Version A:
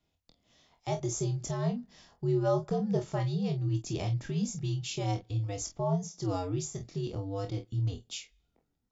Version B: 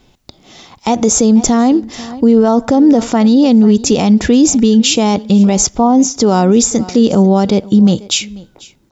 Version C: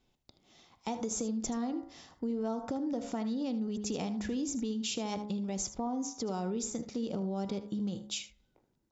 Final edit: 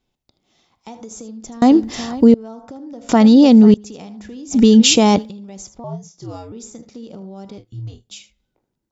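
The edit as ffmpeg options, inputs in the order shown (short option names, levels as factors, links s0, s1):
-filter_complex "[1:a]asplit=3[s0][s1][s2];[0:a]asplit=2[s3][s4];[2:a]asplit=6[s5][s6][s7][s8][s9][s10];[s5]atrim=end=1.622[s11];[s0]atrim=start=1.618:end=2.342[s12];[s6]atrim=start=2.338:end=3.092[s13];[s1]atrim=start=3.088:end=3.742[s14];[s7]atrim=start=3.738:end=4.6[s15];[s2]atrim=start=4.5:end=5.31[s16];[s8]atrim=start=5.21:end=5.842[s17];[s3]atrim=start=5.838:end=6.522[s18];[s9]atrim=start=6.518:end=7.582[s19];[s4]atrim=start=7.578:end=8.112[s20];[s10]atrim=start=8.108[s21];[s11][s12]acrossfade=d=0.004:c1=hsin:c2=hsin[s22];[s22][s13]acrossfade=d=0.004:c1=hsin:c2=hsin[s23];[s23][s14]acrossfade=d=0.004:c1=hsin:c2=hsin[s24];[s24][s15]acrossfade=d=0.004:c1=hsin:c2=hsin[s25];[s25][s16]acrossfade=d=0.1:c1=tri:c2=tri[s26];[s26][s17]acrossfade=d=0.1:c1=tri:c2=tri[s27];[s27][s18]acrossfade=d=0.004:c1=hsin:c2=hsin[s28];[s28][s19]acrossfade=d=0.004:c1=hsin:c2=hsin[s29];[s29][s20]acrossfade=d=0.004:c1=hsin:c2=hsin[s30];[s30][s21]acrossfade=d=0.004:c1=hsin:c2=hsin"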